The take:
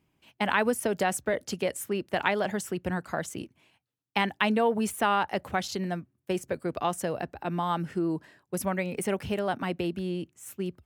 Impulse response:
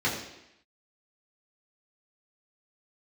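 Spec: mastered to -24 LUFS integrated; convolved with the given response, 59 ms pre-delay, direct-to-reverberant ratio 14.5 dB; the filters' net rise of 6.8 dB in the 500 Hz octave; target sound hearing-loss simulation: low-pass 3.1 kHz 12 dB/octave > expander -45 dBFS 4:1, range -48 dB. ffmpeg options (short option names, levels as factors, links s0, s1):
-filter_complex "[0:a]equalizer=f=500:t=o:g=8.5,asplit=2[s0][s1];[1:a]atrim=start_sample=2205,adelay=59[s2];[s1][s2]afir=irnorm=-1:irlink=0,volume=0.0501[s3];[s0][s3]amix=inputs=2:normalize=0,lowpass=3100,agate=range=0.00398:threshold=0.00562:ratio=4,volume=1.26"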